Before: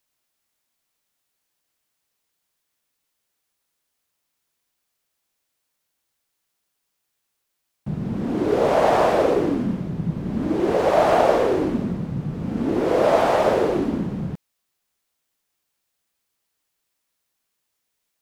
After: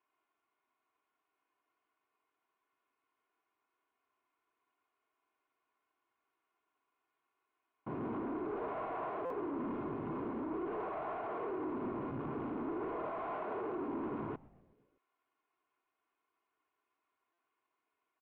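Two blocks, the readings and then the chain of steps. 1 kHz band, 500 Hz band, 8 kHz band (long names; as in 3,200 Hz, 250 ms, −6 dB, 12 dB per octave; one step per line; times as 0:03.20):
−17.5 dB, −20.5 dB, can't be measured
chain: low-shelf EQ 230 Hz −10.5 dB
comb filter 2.8 ms, depth 88%
reversed playback
downward compressor, threshold −29 dBFS, peak gain reduction 17 dB
reversed playback
brickwall limiter −25.5 dBFS, peak gain reduction 6.5 dB
speech leveller 0.5 s
tube saturation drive 36 dB, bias 0.6
loudspeaker in its box 150–2,100 Hz, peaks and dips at 700 Hz −5 dB, 1,000 Hz +6 dB, 1,800 Hz −8 dB
echo with shifted repeats 124 ms, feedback 64%, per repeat −140 Hz, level −22 dB
buffer that repeats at 0:09.25/0:17.33, samples 256, times 8
level +1.5 dB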